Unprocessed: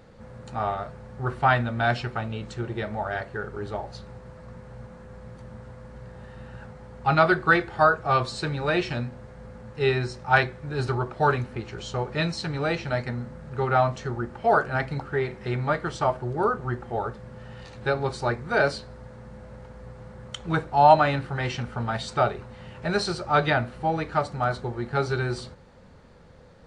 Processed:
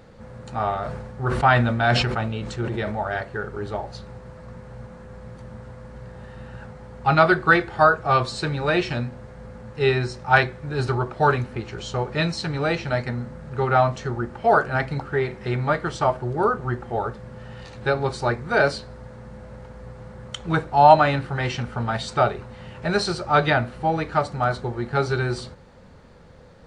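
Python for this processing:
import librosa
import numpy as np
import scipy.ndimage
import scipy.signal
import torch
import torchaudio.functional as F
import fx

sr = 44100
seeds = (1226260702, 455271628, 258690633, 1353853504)

y = fx.sustainer(x, sr, db_per_s=37.0, at=(0.73, 2.94))
y = F.gain(torch.from_numpy(y), 3.0).numpy()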